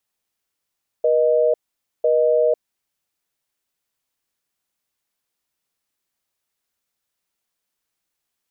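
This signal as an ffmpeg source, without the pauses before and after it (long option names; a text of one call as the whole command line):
ffmpeg -f lavfi -i "aevalsrc='0.15*(sin(2*PI*480*t)+sin(2*PI*620*t))*clip(min(mod(t,1),0.5-mod(t,1))/0.005,0,1)':duration=1.78:sample_rate=44100" out.wav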